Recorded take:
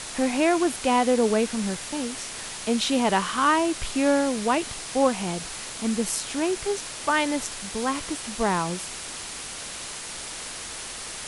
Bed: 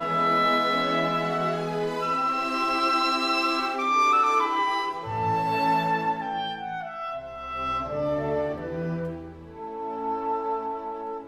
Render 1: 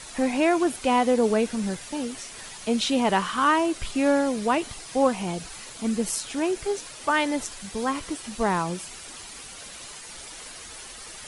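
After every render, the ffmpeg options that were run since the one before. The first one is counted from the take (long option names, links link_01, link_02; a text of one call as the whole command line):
ffmpeg -i in.wav -af "afftdn=noise_reduction=9:noise_floor=-37" out.wav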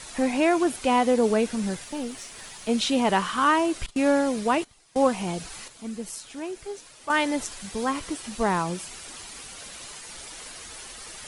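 ffmpeg -i in.wav -filter_complex "[0:a]asettb=1/sr,asplit=3[link_01][link_02][link_03];[link_01]atrim=end=1.844[link_04];[link_02]atrim=start=1.84:end=2.69,asetpts=PTS-STARTPTS,afade=type=in:duration=0.004:curve=qsin,afade=type=out:start_time=0.846:duration=0.004:curve=qsin,aeval=exprs='(tanh(12.6*val(0)+0.45)-tanh(0.45))/12.6':channel_layout=same[link_05];[link_03]atrim=start=2.686[link_06];[link_04][link_05]acrossfade=duration=0.004:curve1=hsin:curve2=qsin[link_07];[link_07][link_06]acrossfade=duration=0.004:curve1=qsin:curve2=hsin,asettb=1/sr,asplit=3[link_08][link_09][link_10];[link_08]atrim=end=3.864[link_11];[link_09]atrim=start=3.86:end=5.02,asetpts=PTS-STARTPTS,afade=type=in:duration=0.004:curve=qsin,afade=type=out:start_time=1.156:duration=0.004:curve=qsin,agate=range=-19dB:threshold=-32dB:ratio=16:release=100:detection=peak[link_12];[link_10]atrim=start=5.016[link_13];[link_11][link_12]acrossfade=duration=0.004:curve1=hsin:curve2=qsin[link_14];[link_14][link_13]acrossfade=duration=0.004:curve1=qsin:curve2=hsin,asplit=3[link_15][link_16][link_17];[link_15]atrim=end=5.682[link_18];[link_16]atrim=start=5.678:end=7.102,asetpts=PTS-STARTPTS,volume=-8.5dB[link_19];[link_17]atrim=start=7.098[link_20];[link_18][link_19]acrossfade=duration=0.004:curve1=hsin:curve2=hsin[link_21];[link_21][link_20]acrossfade=duration=0.004:curve1=hsin:curve2=hsin" out.wav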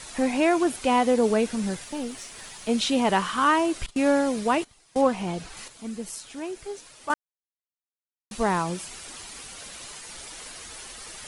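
ffmpeg -i in.wav -filter_complex "[0:a]asettb=1/sr,asplit=3[link_01][link_02][link_03];[link_01]atrim=end=5.014[link_04];[link_02]atrim=start=5.01:end=5.57,asetpts=PTS-STARTPTS,afade=type=in:duration=0.004:curve=qsin,afade=type=out:start_time=0.556:duration=0.004:curve=qsin,highshelf=frequency=5700:gain=-9.5[link_05];[link_03]atrim=start=5.566[link_06];[link_04][link_05]acrossfade=duration=0.004:curve1=hsin:curve2=qsin[link_07];[link_07][link_06]acrossfade=duration=0.004:curve1=qsin:curve2=hsin,asplit=3[link_08][link_09][link_10];[link_08]atrim=end=7.14,asetpts=PTS-STARTPTS,afade=type=out:start_time=7.136:duration=0.004:curve=hsin[link_11];[link_09]atrim=start=7.14:end=8.31,asetpts=PTS-STARTPTS,volume=0[link_12];[link_10]atrim=start=8.31,asetpts=PTS-STARTPTS,afade=type=in:duration=0.004:curve=hsin[link_13];[link_11][link_12][link_13]concat=n=3:v=0:a=1" out.wav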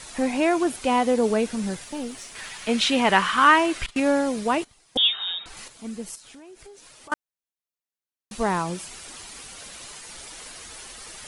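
ffmpeg -i in.wav -filter_complex "[0:a]asettb=1/sr,asplit=3[link_01][link_02][link_03];[link_01]atrim=end=2.354[link_04];[link_02]atrim=start=2.35:end=4,asetpts=PTS-STARTPTS,afade=type=in:duration=0.004:curve=qsin,afade=type=out:start_time=1.646:duration=0.004:curve=qsin,equalizer=frequency=2000:width=0.72:gain=9[link_05];[link_03]atrim=start=3.996[link_06];[link_04][link_05]acrossfade=duration=0.004:curve1=hsin:curve2=qsin[link_07];[link_07][link_06]acrossfade=duration=0.004:curve1=qsin:curve2=hsin,asettb=1/sr,asplit=3[link_08][link_09][link_10];[link_08]atrim=end=4.974[link_11];[link_09]atrim=start=4.97:end=5.46,asetpts=PTS-STARTPTS,afade=type=in:duration=0.004:curve=qsin,afade=type=out:start_time=0.486:duration=0.004:curve=qsin,lowpass=frequency=3300:width_type=q:width=0.5098,lowpass=frequency=3300:width_type=q:width=0.6013,lowpass=frequency=3300:width_type=q:width=0.9,lowpass=frequency=3300:width_type=q:width=2.563,afreqshift=-3900[link_12];[link_10]atrim=start=5.456[link_13];[link_11][link_12]acrossfade=duration=0.004:curve1=hsin:curve2=qsin[link_14];[link_14][link_13]acrossfade=duration=0.004:curve1=qsin:curve2=hsin,asettb=1/sr,asplit=3[link_15][link_16][link_17];[link_15]atrim=end=6.154[link_18];[link_16]atrim=start=6.15:end=7.12,asetpts=PTS-STARTPTS,afade=type=in:duration=0.004:curve=qsin,afade=type=out:start_time=0.966:duration=0.004:curve=qsin,acompressor=threshold=-43dB:ratio=6:attack=3.2:release=140:knee=1:detection=peak[link_19];[link_17]atrim=start=7.116[link_20];[link_18][link_19]acrossfade=duration=0.004:curve1=hsin:curve2=qsin[link_21];[link_21][link_20]acrossfade=duration=0.004:curve1=qsin:curve2=hsin" out.wav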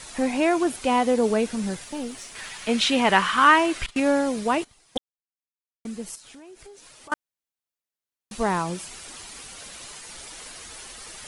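ffmpeg -i in.wav -filter_complex "[0:a]asplit=3[link_01][link_02][link_03];[link_01]atrim=end=4.98,asetpts=PTS-STARTPTS,afade=type=out:start_time=4.976:duration=0.004:curve=hsin[link_04];[link_02]atrim=start=4.98:end=5.85,asetpts=PTS-STARTPTS,volume=0[link_05];[link_03]atrim=start=5.85,asetpts=PTS-STARTPTS,afade=type=in:duration=0.004:curve=hsin[link_06];[link_04][link_05][link_06]concat=n=3:v=0:a=1" out.wav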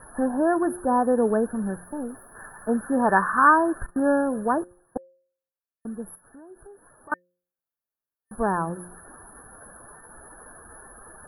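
ffmpeg -i in.wav -af "afftfilt=real='re*(1-between(b*sr/4096,1800,9900))':imag='im*(1-between(b*sr/4096,1800,9900))':win_size=4096:overlap=0.75,bandreject=frequency=177.8:width_type=h:width=4,bandreject=frequency=355.6:width_type=h:width=4,bandreject=frequency=533.4:width_type=h:width=4" out.wav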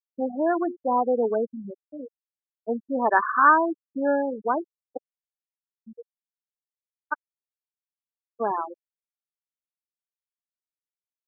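ffmpeg -i in.wav -af "highpass=320,afftfilt=real='re*gte(hypot(re,im),0.141)':imag='im*gte(hypot(re,im),0.141)':win_size=1024:overlap=0.75" out.wav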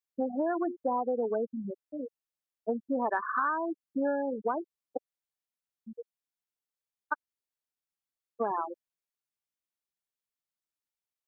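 ffmpeg -i in.wav -af "acompressor=threshold=-26dB:ratio=10" out.wav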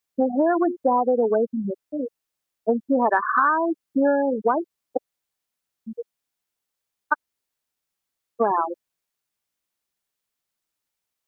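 ffmpeg -i in.wav -af "volume=10dB" out.wav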